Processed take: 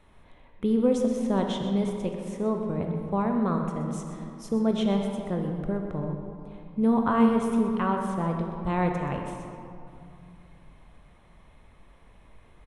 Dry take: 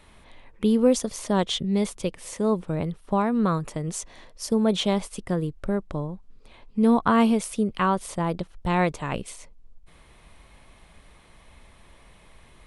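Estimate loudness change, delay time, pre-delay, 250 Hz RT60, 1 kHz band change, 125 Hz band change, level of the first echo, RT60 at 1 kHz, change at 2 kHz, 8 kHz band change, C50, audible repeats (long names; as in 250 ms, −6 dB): −2.0 dB, 126 ms, 20 ms, 3.0 s, −3.0 dB, −1.0 dB, −11.5 dB, 2.8 s, −5.5 dB, below −10 dB, 3.5 dB, 1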